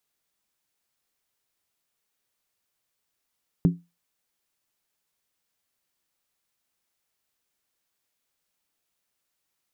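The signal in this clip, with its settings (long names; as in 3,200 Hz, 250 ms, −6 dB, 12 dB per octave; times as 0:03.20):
struck skin, lowest mode 172 Hz, decay 0.24 s, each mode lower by 8 dB, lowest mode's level −12 dB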